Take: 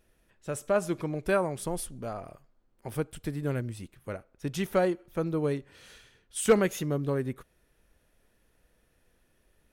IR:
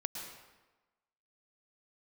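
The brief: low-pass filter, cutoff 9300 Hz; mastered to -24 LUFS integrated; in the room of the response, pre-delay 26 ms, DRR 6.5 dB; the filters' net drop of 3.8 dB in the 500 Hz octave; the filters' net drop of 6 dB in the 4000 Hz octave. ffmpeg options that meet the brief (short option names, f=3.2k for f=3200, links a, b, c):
-filter_complex "[0:a]lowpass=9.3k,equalizer=f=500:t=o:g=-4.5,equalizer=f=4k:t=o:g=-8,asplit=2[a][b];[1:a]atrim=start_sample=2205,adelay=26[c];[b][c]afir=irnorm=-1:irlink=0,volume=-7.5dB[d];[a][d]amix=inputs=2:normalize=0,volume=8.5dB"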